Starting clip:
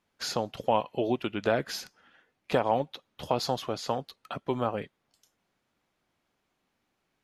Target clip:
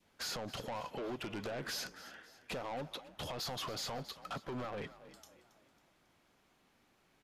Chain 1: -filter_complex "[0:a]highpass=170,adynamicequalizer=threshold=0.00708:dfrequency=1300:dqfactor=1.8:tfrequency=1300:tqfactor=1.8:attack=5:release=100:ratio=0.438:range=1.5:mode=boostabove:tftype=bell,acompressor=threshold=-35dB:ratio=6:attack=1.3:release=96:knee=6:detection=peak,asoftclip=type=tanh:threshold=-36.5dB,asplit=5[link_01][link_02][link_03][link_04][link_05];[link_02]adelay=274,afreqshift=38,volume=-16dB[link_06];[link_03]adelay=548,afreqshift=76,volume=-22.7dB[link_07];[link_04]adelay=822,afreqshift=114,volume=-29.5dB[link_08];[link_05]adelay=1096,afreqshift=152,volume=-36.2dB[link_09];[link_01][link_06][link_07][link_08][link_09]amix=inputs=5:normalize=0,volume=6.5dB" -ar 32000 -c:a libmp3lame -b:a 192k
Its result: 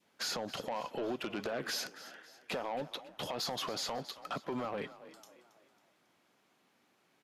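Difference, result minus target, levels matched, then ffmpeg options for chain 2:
125 Hz band −6.0 dB; soft clipping: distortion −5 dB
-filter_complex "[0:a]adynamicequalizer=threshold=0.00708:dfrequency=1300:dqfactor=1.8:tfrequency=1300:tqfactor=1.8:attack=5:release=100:ratio=0.438:range=1.5:mode=boostabove:tftype=bell,acompressor=threshold=-35dB:ratio=6:attack=1.3:release=96:knee=6:detection=peak,asoftclip=type=tanh:threshold=-43dB,asplit=5[link_01][link_02][link_03][link_04][link_05];[link_02]adelay=274,afreqshift=38,volume=-16dB[link_06];[link_03]adelay=548,afreqshift=76,volume=-22.7dB[link_07];[link_04]adelay=822,afreqshift=114,volume=-29.5dB[link_08];[link_05]adelay=1096,afreqshift=152,volume=-36.2dB[link_09];[link_01][link_06][link_07][link_08][link_09]amix=inputs=5:normalize=0,volume=6.5dB" -ar 32000 -c:a libmp3lame -b:a 192k

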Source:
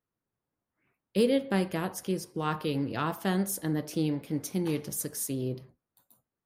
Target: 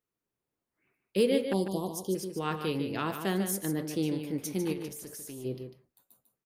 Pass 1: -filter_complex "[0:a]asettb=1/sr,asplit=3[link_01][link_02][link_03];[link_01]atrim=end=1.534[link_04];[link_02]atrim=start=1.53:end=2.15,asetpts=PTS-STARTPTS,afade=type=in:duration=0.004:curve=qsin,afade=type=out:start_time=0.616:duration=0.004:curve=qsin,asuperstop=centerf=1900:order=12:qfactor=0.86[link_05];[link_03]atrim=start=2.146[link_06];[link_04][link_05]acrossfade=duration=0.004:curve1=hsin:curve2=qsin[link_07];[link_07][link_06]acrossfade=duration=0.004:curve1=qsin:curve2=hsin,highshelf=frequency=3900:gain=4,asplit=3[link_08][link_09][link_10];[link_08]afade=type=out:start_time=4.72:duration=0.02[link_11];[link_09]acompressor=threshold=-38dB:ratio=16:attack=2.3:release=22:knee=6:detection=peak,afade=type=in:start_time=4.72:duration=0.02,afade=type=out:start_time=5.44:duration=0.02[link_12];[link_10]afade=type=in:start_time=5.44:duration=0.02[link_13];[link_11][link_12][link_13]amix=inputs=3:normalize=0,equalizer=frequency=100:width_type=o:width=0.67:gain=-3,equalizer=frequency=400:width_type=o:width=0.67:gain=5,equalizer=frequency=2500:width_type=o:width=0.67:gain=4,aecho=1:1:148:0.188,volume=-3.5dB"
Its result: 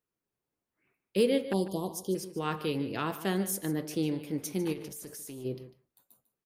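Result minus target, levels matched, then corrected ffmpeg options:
echo-to-direct −6.5 dB
-filter_complex "[0:a]asettb=1/sr,asplit=3[link_01][link_02][link_03];[link_01]atrim=end=1.534[link_04];[link_02]atrim=start=1.53:end=2.15,asetpts=PTS-STARTPTS,afade=type=in:duration=0.004:curve=qsin,afade=type=out:start_time=0.616:duration=0.004:curve=qsin,asuperstop=centerf=1900:order=12:qfactor=0.86[link_05];[link_03]atrim=start=2.146[link_06];[link_04][link_05]acrossfade=duration=0.004:curve1=hsin:curve2=qsin[link_07];[link_07][link_06]acrossfade=duration=0.004:curve1=qsin:curve2=hsin,highshelf=frequency=3900:gain=4,asplit=3[link_08][link_09][link_10];[link_08]afade=type=out:start_time=4.72:duration=0.02[link_11];[link_09]acompressor=threshold=-38dB:ratio=16:attack=2.3:release=22:knee=6:detection=peak,afade=type=in:start_time=4.72:duration=0.02,afade=type=out:start_time=5.44:duration=0.02[link_12];[link_10]afade=type=in:start_time=5.44:duration=0.02[link_13];[link_11][link_12][link_13]amix=inputs=3:normalize=0,equalizer=frequency=100:width_type=o:width=0.67:gain=-3,equalizer=frequency=400:width_type=o:width=0.67:gain=5,equalizer=frequency=2500:width_type=o:width=0.67:gain=4,aecho=1:1:148:0.398,volume=-3.5dB"

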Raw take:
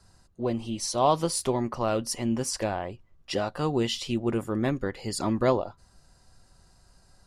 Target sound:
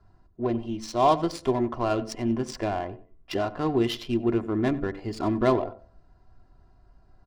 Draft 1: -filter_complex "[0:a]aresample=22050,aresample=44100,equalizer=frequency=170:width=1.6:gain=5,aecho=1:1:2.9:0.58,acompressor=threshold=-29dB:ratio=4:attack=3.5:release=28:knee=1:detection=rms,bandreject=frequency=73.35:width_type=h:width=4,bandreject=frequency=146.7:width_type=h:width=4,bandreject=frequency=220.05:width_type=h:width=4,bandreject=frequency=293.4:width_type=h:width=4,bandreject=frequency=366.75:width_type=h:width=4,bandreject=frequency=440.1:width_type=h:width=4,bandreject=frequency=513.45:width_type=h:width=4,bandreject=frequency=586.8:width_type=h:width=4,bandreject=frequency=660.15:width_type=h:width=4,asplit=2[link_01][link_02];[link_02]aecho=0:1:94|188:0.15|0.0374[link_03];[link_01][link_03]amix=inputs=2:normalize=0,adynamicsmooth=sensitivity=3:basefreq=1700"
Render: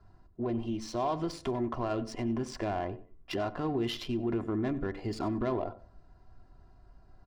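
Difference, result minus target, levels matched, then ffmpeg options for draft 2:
downward compressor: peak gain reduction +12 dB
-filter_complex "[0:a]aresample=22050,aresample=44100,equalizer=frequency=170:width=1.6:gain=5,aecho=1:1:2.9:0.58,bandreject=frequency=73.35:width_type=h:width=4,bandreject=frequency=146.7:width_type=h:width=4,bandreject=frequency=220.05:width_type=h:width=4,bandreject=frequency=293.4:width_type=h:width=4,bandreject=frequency=366.75:width_type=h:width=4,bandreject=frequency=440.1:width_type=h:width=4,bandreject=frequency=513.45:width_type=h:width=4,bandreject=frequency=586.8:width_type=h:width=4,bandreject=frequency=660.15:width_type=h:width=4,asplit=2[link_01][link_02];[link_02]aecho=0:1:94|188:0.15|0.0374[link_03];[link_01][link_03]amix=inputs=2:normalize=0,adynamicsmooth=sensitivity=3:basefreq=1700"

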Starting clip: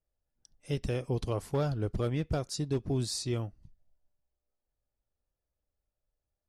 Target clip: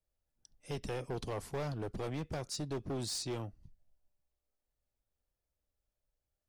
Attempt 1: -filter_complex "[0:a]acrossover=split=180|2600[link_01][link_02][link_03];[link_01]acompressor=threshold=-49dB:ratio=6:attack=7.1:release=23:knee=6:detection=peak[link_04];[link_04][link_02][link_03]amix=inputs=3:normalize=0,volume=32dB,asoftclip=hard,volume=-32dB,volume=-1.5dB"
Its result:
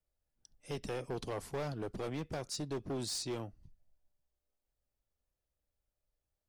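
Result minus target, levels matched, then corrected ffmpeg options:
downward compressor: peak gain reduction +5.5 dB
-filter_complex "[0:a]acrossover=split=180|2600[link_01][link_02][link_03];[link_01]acompressor=threshold=-42.5dB:ratio=6:attack=7.1:release=23:knee=6:detection=peak[link_04];[link_04][link_02][link_03]amix=inputs=3:normalize=0,volume=32dB,asoftclip=hard,volume=-32dB,volume=-1.5dB"

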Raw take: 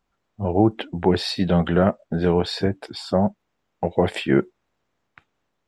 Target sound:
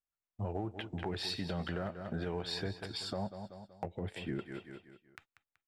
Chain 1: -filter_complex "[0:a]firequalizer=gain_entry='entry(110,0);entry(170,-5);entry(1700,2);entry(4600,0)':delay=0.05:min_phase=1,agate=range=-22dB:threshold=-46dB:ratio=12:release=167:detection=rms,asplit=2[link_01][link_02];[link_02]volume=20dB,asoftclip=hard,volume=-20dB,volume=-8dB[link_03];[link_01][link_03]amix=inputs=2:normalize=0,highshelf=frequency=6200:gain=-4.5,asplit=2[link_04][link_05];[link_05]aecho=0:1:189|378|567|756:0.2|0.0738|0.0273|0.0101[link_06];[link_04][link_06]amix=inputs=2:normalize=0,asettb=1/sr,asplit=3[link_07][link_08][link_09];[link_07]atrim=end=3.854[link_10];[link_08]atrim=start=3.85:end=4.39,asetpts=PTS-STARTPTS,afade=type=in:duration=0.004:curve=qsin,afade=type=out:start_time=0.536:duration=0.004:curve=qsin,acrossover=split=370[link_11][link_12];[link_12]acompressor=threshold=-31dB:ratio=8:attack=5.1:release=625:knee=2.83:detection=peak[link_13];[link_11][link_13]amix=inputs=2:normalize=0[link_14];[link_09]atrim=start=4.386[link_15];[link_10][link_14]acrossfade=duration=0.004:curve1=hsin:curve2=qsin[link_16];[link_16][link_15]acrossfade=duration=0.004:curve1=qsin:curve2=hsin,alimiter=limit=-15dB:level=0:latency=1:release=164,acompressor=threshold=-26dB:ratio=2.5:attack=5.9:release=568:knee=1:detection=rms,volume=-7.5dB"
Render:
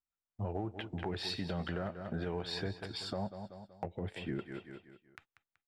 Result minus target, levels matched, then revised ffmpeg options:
8,000 Hz band −2.5 dB
-filter_complex "[0:a]firequalizer=gain_entry='entry(110,0);entry(170,-5);entry(1700,2);entry(4600,0)':delay=0.05:min_phase=1,agate=range=-22dB:threshold=-46dB:ratio=12:release=167:detection=rms,asplit=2[link_01][link_02];[link_02]volume=20dB,asoftclip=hard,volume=-20dB,volume=-8dB[link_03];[link_01][link_03]amix=inputs=2:normalize=0,highshelf=frequency=6200:gain=2,asplit=2[link_04][link_05];[link_05]aecho=0:1:189|378|567|756:0.2|0.0738|0.0273|0.0101[link_06];[link_04][link_06]amix=inputs=2:normalize=0,asettb=1/sr,asplit=3[link_07][link_08][link_09];[link_07]atrim=end=3.854[link_10];[link_08]atrim=start=3.85:end=4.39,asetpts=PTS-STARTPTS,afade=type=in:duration=0.004:curve=qsin,afade=type=out:start_time=0.536:duration=0.004:curve=qsin,acrossover=split=370[link_11][link_12];[link_12]acompressor=threshold=-31dB:ratio=8:attack=5.1:release=625:knee=2.83:detection=peak[link_13];[link_11][link_13]amix=inputs=2:normalize=0[link_14];[link_09]atrim=start=4.386[link_15];[link_10][link_14]acrossfade=duration=0.004:curve1=hsin:curve2=qsin[link_16];[link_16][link_15]acrossfade=duration=0.004:curve1=qsin:curve2=hsin,alimiter=limit=-15dB:level=0:latency=1:release=164,acompressor=threshold=-26dB:ratio=2.5:attack=5.9:release=568:knee=1:detection=rms,volume=-7.5dB"

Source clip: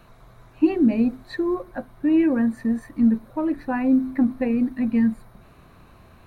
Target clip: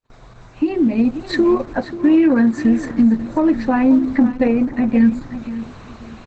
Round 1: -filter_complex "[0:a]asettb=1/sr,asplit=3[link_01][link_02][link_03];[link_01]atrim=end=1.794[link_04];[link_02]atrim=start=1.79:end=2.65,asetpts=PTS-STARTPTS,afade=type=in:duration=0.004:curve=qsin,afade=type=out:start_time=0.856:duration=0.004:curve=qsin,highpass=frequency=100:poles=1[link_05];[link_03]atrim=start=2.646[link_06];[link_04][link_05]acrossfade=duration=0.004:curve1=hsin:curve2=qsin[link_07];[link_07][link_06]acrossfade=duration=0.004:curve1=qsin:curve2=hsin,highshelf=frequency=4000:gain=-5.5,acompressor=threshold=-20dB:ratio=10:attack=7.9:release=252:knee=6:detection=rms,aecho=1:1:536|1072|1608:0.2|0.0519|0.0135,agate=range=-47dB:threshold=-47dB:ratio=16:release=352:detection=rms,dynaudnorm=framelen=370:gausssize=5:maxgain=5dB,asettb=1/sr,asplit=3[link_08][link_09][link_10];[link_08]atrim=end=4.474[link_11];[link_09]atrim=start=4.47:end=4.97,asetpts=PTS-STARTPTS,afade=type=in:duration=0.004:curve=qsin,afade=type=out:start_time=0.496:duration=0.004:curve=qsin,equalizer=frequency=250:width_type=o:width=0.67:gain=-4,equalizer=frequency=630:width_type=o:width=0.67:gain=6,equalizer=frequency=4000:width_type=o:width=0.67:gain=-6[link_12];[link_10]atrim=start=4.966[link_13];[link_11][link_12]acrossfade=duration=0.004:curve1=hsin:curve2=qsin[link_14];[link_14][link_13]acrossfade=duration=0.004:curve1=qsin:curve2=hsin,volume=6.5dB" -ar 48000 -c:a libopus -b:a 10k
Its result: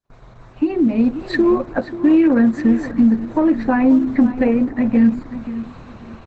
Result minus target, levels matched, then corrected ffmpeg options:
8,000 Hz band −6.0 dB
-filter_complex "[0:a]asettb=1/sr,asplit=3[link_01][link_02][link_03];[link_01]atrim=end=1.794[link_04];[link_02]atrim=start=1.79:end=2.65,asetpts=PTS-STARTPTS,afade=type=in:duration=0.004:curve=qsin,afade=type=out:start_time=0.856:duration=0.004:curve=qsin,highpass=frequency=100:poles=1[link_05];[link_03]atrim=start=2.646[link_06];[link_04][link_05]acrossfade=duration=0.004:curve1=hsin:curve2=qsin[link_07];[link_07][link_06]acrossfade=duration=0.004:curve1=qsin:curve2=hsin,highshelf=frequency=4000:gain=5.5,acompressor=threshold=-20dB:ratio=10:attack=7.9:release=252:knee=6:detection=rms,aecho=1:1:536|1072|1608:0.2|0.0519|0.0135,agate=range=-47dB:threshold=-47dB:ratio=16:release=352:detection=rms,dynaudnorm=framelen=370:gausssize=5:maxgain=5dB,asettb=1/sr,asplit=3[link_08][link_09][link_10];[link_08]atrim=end=4.474[link_11];[link_09]atrim=start=4.47:end=4.97,asetpts=PTS-STARTPTS,afade=type=in:duration=0.004:curve=qsin,afade=type=out:start_time=0.496:duration=0.004:curve=qsin,equalizer=frequency=250:width_type=o:width=0.67:gain=-4,equalizer=frequency=630:width_type=o:width=0.67:gain=6,equalizer=frequency=4000:width_type=o:width=0.67:gain=-6[link_12];[link_10]atrim=start=4.966[link_13];[link_11][link_12]acrossfade=duration=0.004:curve1=hsin:curve2=qsin[link_14];[link_14][link_13]acrossfade=duration=0.004:curve1=qsin:curve2=hsin,volume=6.5dB" -ar 48000 -c:a libopus -b:a 10k

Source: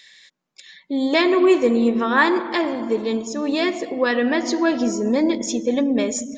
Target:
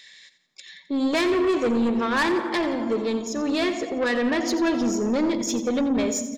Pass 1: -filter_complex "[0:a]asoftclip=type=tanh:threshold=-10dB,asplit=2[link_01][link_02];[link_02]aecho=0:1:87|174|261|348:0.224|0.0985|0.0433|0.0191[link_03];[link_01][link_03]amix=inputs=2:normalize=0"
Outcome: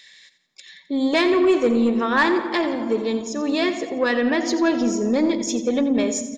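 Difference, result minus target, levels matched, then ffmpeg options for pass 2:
soft clipping: distortion −9 dB
-filter_complex "[0:a]asoftclip=type=tanh:threshold=-18.5dB,asplit=2[link_01][link_02];[link_02]aecho=0:1:87|174|261|348:0.224|0.0985|0.0433|0.0191[link_03];[link_01][link_03]amix=inputs=2:normalize=0"

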